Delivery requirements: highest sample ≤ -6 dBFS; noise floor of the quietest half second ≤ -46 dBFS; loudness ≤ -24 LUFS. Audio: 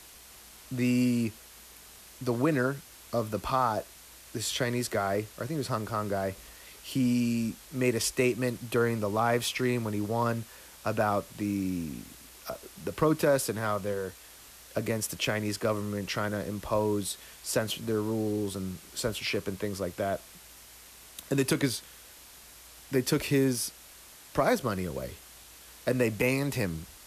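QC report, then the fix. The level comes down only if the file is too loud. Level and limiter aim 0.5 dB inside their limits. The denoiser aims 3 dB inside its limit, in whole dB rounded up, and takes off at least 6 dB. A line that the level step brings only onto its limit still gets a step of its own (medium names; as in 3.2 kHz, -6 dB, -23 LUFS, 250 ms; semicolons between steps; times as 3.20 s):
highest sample -14.5 dBFS: pass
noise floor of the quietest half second -51 dBFS: pass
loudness -30.0 LUFS: pass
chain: none needed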